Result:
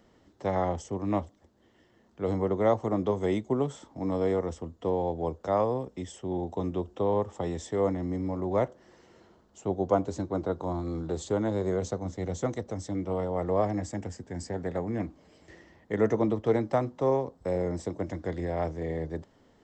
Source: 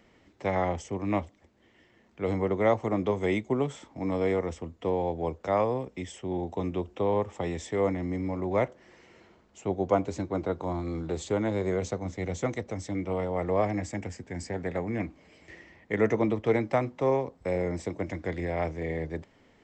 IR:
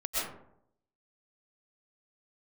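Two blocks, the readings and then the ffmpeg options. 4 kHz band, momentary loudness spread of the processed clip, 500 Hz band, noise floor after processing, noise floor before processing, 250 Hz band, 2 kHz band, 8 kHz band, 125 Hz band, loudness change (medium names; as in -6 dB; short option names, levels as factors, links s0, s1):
-2.5 dB, 8 LU, 0.0 dB, -63 dBFS, -62 dBFS, 0.0 dB, -6.5 dB, -0.5 dB, 0.0 dB, -0.5 dB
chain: -af "equalizer=f=2300:w=2.4:g=-11.5"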